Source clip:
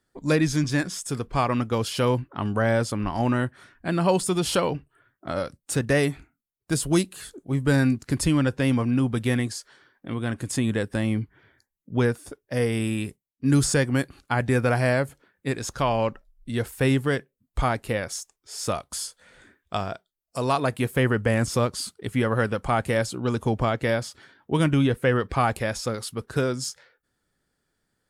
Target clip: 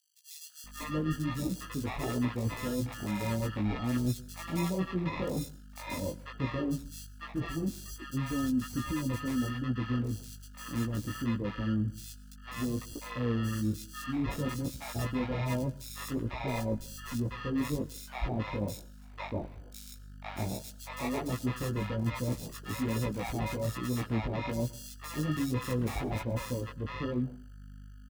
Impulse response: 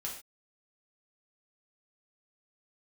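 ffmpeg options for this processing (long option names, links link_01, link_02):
-filter_complex "[0:a]afwtdn=0.02,bass=frequency=250:gain=7,treble=frequency=4000:gain=-5,aecho=1:1:3.6:0.39,areverse,acompressor=threshold=-26dB:ratio=6,areverse,aeval=exprs='val(0)+0.00501*(sin(2*PI*50*n/s)+sin(2*PI*2*50*n/s)/2+sin(2*PI*3*50*n/s)/3+sin(2*PI*4*50*n/s)/4+sin(2*PI*5*50*n/s)/5)':channel_layout=same,acrusher=samples=29:mix=1:aa=0.000001,flanger=delay=15.5:depth=4.4:speed=1.2,acrossover=split=760|3900[link_01][link_02][link_03];[link_02]adelay=500[link_04];[link_01]adelay=640[link_05];[link_05][link_04][link_03]amix=inputs=3:normalize=0,asplit=2[link_06][link_07];[1:a]atrim=start_sample=2205,asetrate=48510,aresample=44100,adelay=108[link_08];[link_07][link_08]afir=irnorm=-1:irlink=0,volume=-19dB[link_09];[link_06][link_09]amix=inputs=2:normalize=0"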